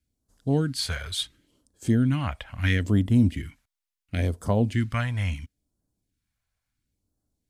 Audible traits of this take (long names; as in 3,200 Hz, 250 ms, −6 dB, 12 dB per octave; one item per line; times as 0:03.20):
phaser sweep stages 2, 0.73 Hz, lowest notch 270–2,200 Hz